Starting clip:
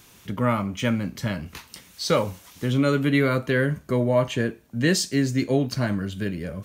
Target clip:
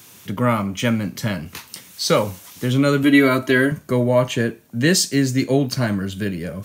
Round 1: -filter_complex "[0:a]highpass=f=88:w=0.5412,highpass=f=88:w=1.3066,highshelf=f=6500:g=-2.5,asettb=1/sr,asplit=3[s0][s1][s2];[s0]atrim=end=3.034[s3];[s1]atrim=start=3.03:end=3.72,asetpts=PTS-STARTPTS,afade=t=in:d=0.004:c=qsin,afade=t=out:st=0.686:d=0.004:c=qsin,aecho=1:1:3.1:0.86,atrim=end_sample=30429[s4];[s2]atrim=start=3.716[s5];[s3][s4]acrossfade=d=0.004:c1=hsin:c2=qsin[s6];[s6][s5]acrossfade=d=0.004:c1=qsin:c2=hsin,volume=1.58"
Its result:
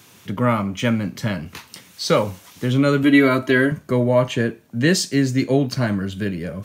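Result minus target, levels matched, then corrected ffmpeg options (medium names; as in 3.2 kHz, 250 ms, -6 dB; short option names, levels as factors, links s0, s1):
8 kHz band -4.5 dB
-filter_complex "[0:a]highpass=f=88:w=0.5412,highpass=f=88:w=1.3066,highshelf=f=6500:g=6.5,asettb=1/sr,asplit=3[s0][s1][s2];[s0]atrim=end=3.034[s3];[s1]atrim=start=3.03:end=3.72,asetpts=PTS-STARTPTS,afade=t=in:d=0.004:c=qsin,afade=t=out:st=0.686:d=0.004:c=qsin,aecho=1:1:3.1:0.86,atrim=end_sample=30429[s4];[s2]atrim=start=3.716[s5];[s3][s4]acrossfade=d=0.004:c1=hsin:c2=qsin[s6];[s6][s5]acrossfade=d=0.004:c1=qsin:c2=hsin,volume=1.58"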